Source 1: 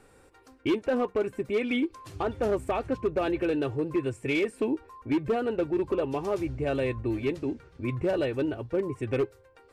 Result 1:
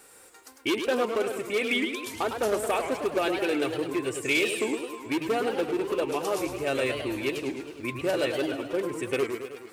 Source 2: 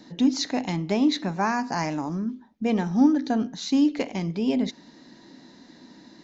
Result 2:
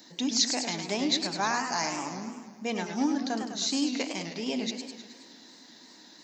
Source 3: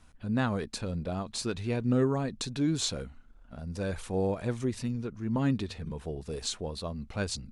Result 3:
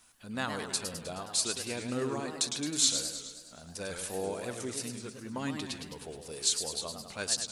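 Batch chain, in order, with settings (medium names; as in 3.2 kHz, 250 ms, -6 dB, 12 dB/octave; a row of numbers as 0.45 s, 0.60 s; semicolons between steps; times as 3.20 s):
RIAA curve recording; modulated delay 105 ms, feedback 62%, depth 202 cents, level -7 dB; peak normalisation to -12 dBFS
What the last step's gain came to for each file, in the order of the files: +2.5 dB, -3.5 dB, -2.5 dB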